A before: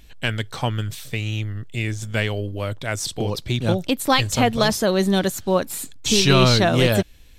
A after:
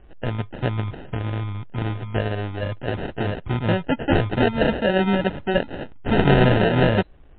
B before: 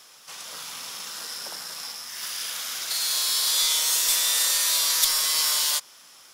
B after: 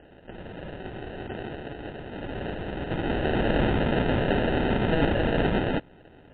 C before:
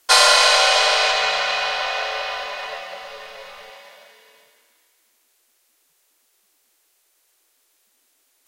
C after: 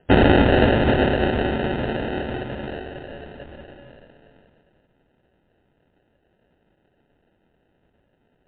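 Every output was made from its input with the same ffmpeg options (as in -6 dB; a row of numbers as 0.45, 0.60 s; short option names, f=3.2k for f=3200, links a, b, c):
-af "acrusher=samples=39:mix=1:aa=0.000001" -ar 8000 -c:a libmp3lame -b:a 64k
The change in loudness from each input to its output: -1.5, -5.0, -3.5 LU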